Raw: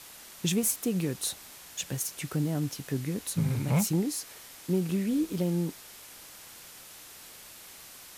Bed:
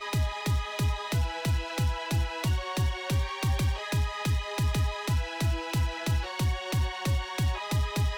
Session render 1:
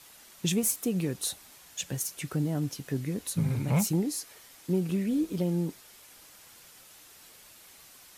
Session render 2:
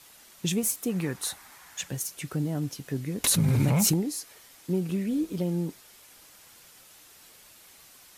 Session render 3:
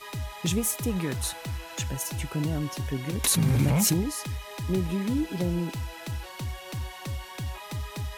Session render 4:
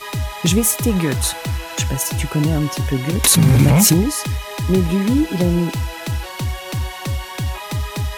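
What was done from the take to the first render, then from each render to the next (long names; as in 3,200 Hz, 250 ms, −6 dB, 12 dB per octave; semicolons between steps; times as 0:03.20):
broadband denoise 6 dB, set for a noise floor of −49 dBFS
0:00.89–0:01.88: flat-topped bell 1,300 Hz +8.5 dB; 0:03.24–0:03.94: envelope flattener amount 100%
mix in bed −6.5 dB
level +11 dB; brickwall limiter −1 dBFS, peak gain reduction 1 dB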